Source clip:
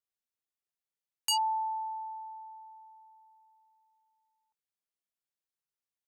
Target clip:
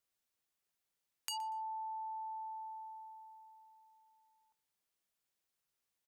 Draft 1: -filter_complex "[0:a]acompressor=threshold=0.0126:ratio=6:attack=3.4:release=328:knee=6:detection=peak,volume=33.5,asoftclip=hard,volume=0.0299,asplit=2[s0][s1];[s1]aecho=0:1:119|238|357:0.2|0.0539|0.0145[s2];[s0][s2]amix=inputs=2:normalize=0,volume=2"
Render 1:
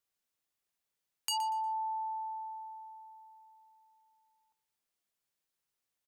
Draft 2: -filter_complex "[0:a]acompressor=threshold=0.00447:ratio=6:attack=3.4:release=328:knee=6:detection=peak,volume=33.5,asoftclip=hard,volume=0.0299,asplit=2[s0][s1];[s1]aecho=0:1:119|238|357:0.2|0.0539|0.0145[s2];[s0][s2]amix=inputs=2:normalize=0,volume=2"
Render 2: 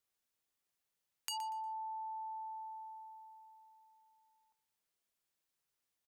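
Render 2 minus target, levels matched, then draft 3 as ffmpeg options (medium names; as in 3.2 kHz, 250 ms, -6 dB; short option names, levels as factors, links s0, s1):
echo-to-direct +7 dB
-filter_complex "[0:a]acompressor=threshold=0.00447:ratio=6:attack=3.4:release=328:knee=6:detection=peak,volume=33.5,asoftclip=hard,volume=0.0299,asplit=2[s0][s1];[s1]aecho=0:1:119|238:0.0891|0.0241[s2];[s0][s2]amix=inputs=2:normalize=0,volume=2"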